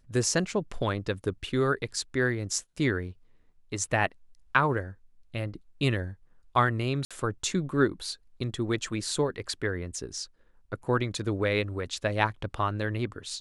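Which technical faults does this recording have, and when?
0:07.05–0:07.11: drop-out 56 ms

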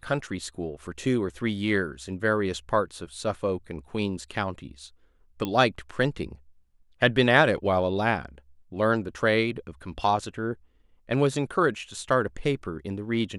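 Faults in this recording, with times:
0:05.45: click −16 dBFS

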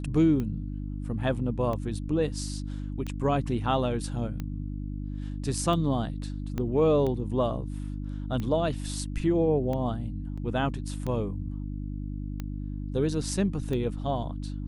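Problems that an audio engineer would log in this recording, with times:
mains hum 50 Hz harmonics 6 −34 dBFS
scratch tick 45 rpm −21 dBFS
0:06.58: click −19 dBFS
0:10.37–0:10.38: drop-out 5.7 ms

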